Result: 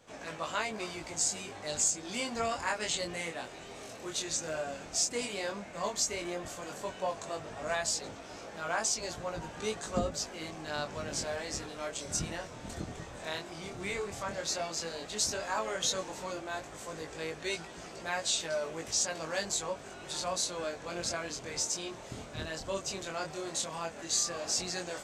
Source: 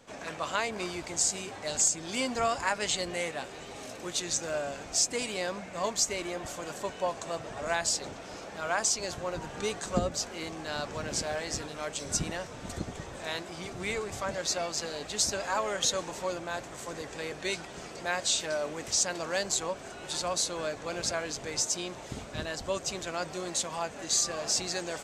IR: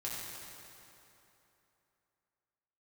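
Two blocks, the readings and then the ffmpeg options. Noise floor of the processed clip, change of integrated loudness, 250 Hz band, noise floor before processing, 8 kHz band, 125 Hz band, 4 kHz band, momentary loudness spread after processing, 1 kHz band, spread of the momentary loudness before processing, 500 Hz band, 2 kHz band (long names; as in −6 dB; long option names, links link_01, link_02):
−47 dBFS, −3.0 dB, −3.0 dB, −44 dBFS, −3.0 dB, −3.0 dB, −3.0 dB, 11 LU, −3.0 dB, 11 LU, −3.0 dB, −3.0 dB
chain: -af "flanger=delay=18:depth=7.4:speed=0.11"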